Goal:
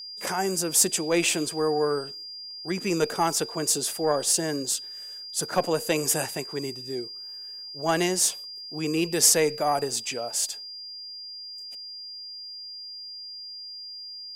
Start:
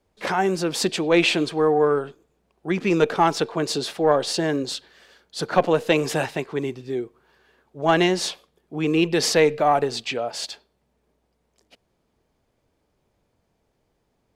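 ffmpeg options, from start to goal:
-af "aexciter=amount=8.8:drive=4.2:freq=6k,aeval=exprs='val(0)+0.0282*sin(2*PI*4800*n/s)':c=same,volume=-6dB"

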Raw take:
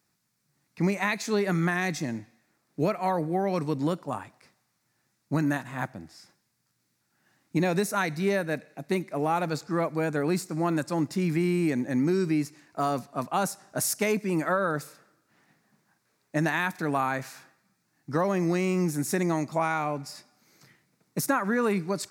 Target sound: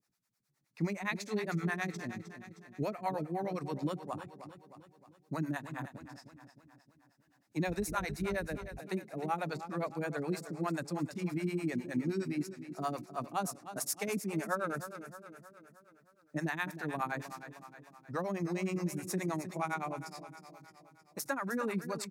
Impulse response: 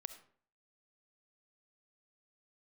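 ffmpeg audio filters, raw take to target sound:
-filter_complex "[0:a]aecho=1:1:310|620|930|1240|1550|1860:0.266|0.138|0.0719|0.0374|0.0195|0.0101,asettb=1/sr,asplit=3[a][b][c];[a]atrim=end=7.684[d];[b]atrim=start=7.68:end=8.79,asetpts=PTS-STARTPTS,afade=t=in:d=0.004:c=qsin,afade=t=out:st=1.106:d=0.004:c=qsin,aeval=exprs='val(0)+0.0126*(sin(2*PI*50*n/s)+sin(2*PI*2*50*n/s)/2+sin(2*PI*3*50*n/s)/3+sin(2*PI*4*50*n/s)/4+sin(2*PI*5*50*n/s)/5)':c=same[e];[c]atrim=start=8.786[f];[d][e]acrossfade=d=0.004:c1=hsin:c2=qsin[g];[g][f]acrossfade=d=0.004:c1=qsin:c2=hsin,acrossover=split=440[h][i];[h]aeval=exprs='val(0)*(1-1/2+1/2*cos(2*PI*9.6*n/s))':c=same[j];[i]aeval=exprs='val(0)*(1-1/2-1/2*cos(2*PI*9.6*n/s))':c=same[k];[j][k]amix=inputs=2:normalize=0,volume=-4.5dB"

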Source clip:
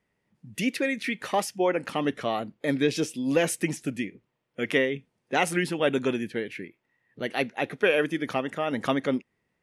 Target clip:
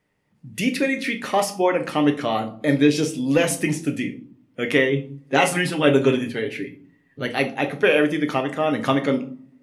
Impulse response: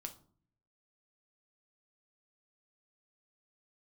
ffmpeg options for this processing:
-filter_complex "[0:a]asettb=1/sr,asplit=3[a][b][c];[a]atrim=end=4.914[d];[b]atrim=start=4.91:end=7.26,asetpts=PTS-STARTPTS,afade=t=in:d=0.004:c=qsin,afade=t=out:st=2.346:d=0.004:c=qsin,aecho=1:1:7.3:0.65,atrim=end_sample=103635[e];[c]atrim=start=7.256[f];[d][e]acrossfade=d=0.004:c1=hsin:c2=qsin[g];[g][f]acrossfade=d=0.004:c1=qsin:c2=hsin[h];[1:a]atrim=start_sample=2205,asetrate=41454,aresample=44100[i];[h][i]afir=irnorm=-1:irlink=0,volume=8.5dB"

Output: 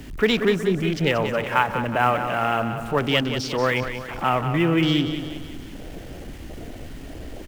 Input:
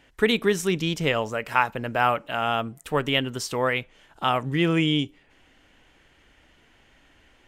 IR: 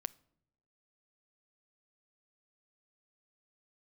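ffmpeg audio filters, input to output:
-filter_complex "[0:a]aeval=exprs='val(0)+0.5*0.0501*sgn(val(0))':c=same,afwtdn=0.0355,acrossover=split=220|1400|2700[a][b][c][d];[c]acrusher=bits=4:mode=log:mix=0:aa=0.000001[e];[a][b][e][d]amix=inputs=4:normalize=0,aecho=1:1:183|366|549|732|915|1098:0.355|0.174|0.0852|0.0417|0.0205|0.01"

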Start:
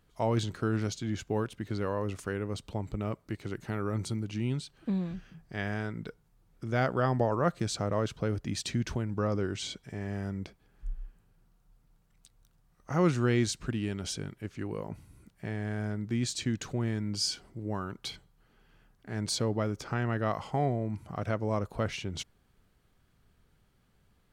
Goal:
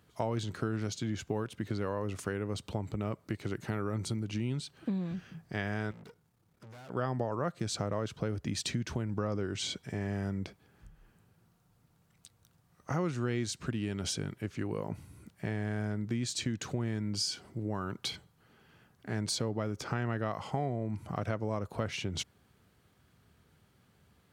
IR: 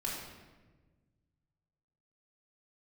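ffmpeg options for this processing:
-filter_complex "[0:a]acompressor=threshold=-35dB:ratio=4,asettb=1/sr,asplit=3[a][b][c];[a]atrim=end=5.914[d];[b]atrim=start=5.91:end=6.9,asetpts=PTS-STARTPTS,afade=t=in:d=0.004:c=qsin,afade=t=out:st=0.986:d=0.004:c=qsin,aeval=exprs='(tanh(447*val(0)+0.75)-tanh(0.75))/447':c=same[e];[c]atrim=start=6.896[f];[d][e]acrossfade=d=0.004:c1=hsin:c2=qsin[g];[g][f]acrossfade=d=0.004:c1=qsin:c2=hsin,highpass=f=67:w=0.5412,highpass=f=67:w=1.3066,volume=4dB"

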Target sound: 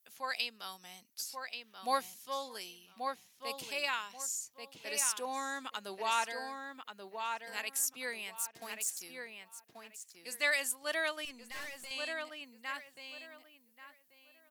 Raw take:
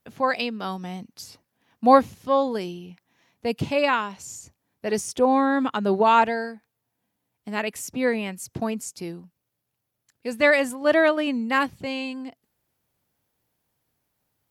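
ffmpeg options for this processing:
-filter_complex "[0:a]asettb=1/sr,asplit=3[a][b][c];[a]atrim=end=8.344[d];[b]atrim=start=8.34:end=9.03,asetpts=PTS-STARTPTS,afade=t=in:d=0.004:c=qsin,afade=t=out:st=0.686:d=0.004:c=qsin,aeval=exprs='sgn(val(0))*max(abs(val(0))-0.00531,0)':c=same[e];[c]atrim=start=9.026[f];[d][e]acrossfade=d=0.004:c1=hsin:c2=qsin[g];[g][f]acrossfade=d=0.004:c1=qsin:c2=hsin,aderivative,asplit=2[h][i];[i]adelay=1134,lowpass=f=3.3k:p=1,volume=-5dB,asplit=2[j][k];[k]adelay=1134,lowpass=f=3.3k:p=1,volume=0.22,asplit=2[l][m];[m]adelay=1134,lowpass=f=3.3k:p=1,volume=0.22[n];[h][j][l][n]amix=inputs=4:normalize=0,asettb=1/sr,asplit=3[o][p][q];[o]atrim=end=11.254[r];[p]atrim=start=11.25:end=11.91,asetpts=PTS-STARTPTS,afade=t=in:d=0.004:c=qsin,afade=t=out:st=0.656:d=0.004:c=qsin,aeval=exprs='(tanh(141*val(0)+0.5)-tanh(0.5))/141':c=same[s];[q]atrim=start=11.906[t];[r][s]acrossfade=d=0.004:c1=hsin:c2=qsin[u];[u][t]acrossfade=d=0.004:c1=qsin:c2=hsin,volume=1.5dB"

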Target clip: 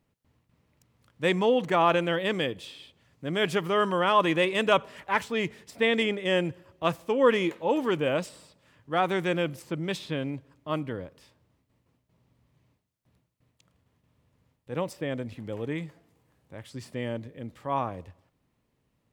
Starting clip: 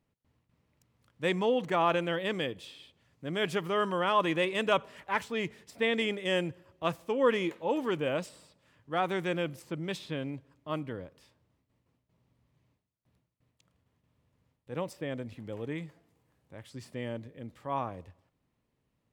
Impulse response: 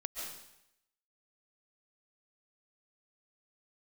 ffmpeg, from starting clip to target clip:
-filter_complex "[0:a]asettb=1/sr,asplit=3[a][b][c];[a]atrim=end=6.034[d];[b]atrim=start=6.03:end=6.45,asetpts=PTS-STARTPTS,afade=t=in:d=0.004:c=qsin,afade=t=out:st=0.416:d=0.004:c=qsin,highshelf=f=4.2k:g=-6[e];[c]atrim=start=6.446[f];[d][e]acrossfade=d=0.004:c1=hsin:c2=qsin[g];[g][f]acrossfade=d=0.004:c1=qsin:c2=hsin,volume=4.5dB"

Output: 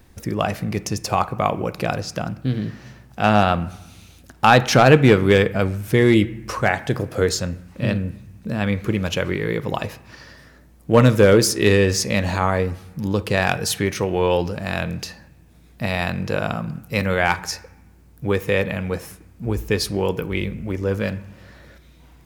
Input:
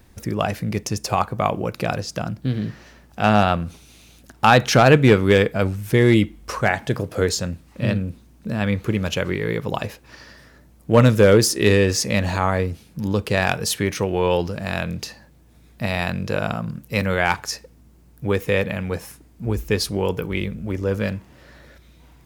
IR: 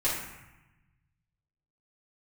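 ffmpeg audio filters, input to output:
-filter_complex "[0:a]asplit=2[a][b];[1:a]atrim=start_sample=2205,lowpass=4.7k[c];[b][c]afir=irnorm=-1:irlink=0,volume=-23dB[d];[a][d]amix=inputs=2:normalize=0"

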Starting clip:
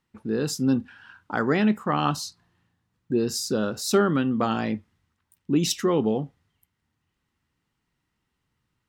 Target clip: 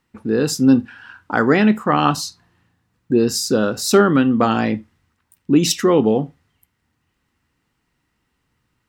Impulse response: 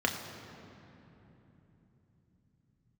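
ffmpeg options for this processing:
-filter_complex "[0:a]asplit=2[a][b];[1:a]atrim=start_sample=2205,atrim=end_sample=3969[c];[b][c]afir=irnorm=-1:irlink=0,volume=-20dB[d];[a][d]amix=inputs=2:normalize=0,volume=6.5dB"

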